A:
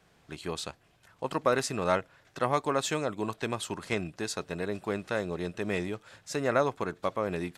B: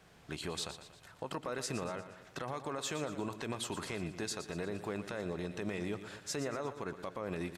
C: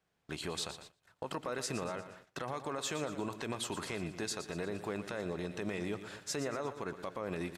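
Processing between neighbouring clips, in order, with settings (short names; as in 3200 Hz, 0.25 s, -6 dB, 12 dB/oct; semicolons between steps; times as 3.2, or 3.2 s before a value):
compressor 4:1, threshold -34 dBFS, peak gain reduction 12 dB; limiter -30.5 dBFS, peak gain reduction 10.5 dB; feedback echo 0.118 s, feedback 49%, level -11.5 dB; gain +2.5 dB
gate -53 dBFS, range -20 dB; low shelf 150 Hz -3 dB; gain +1 dB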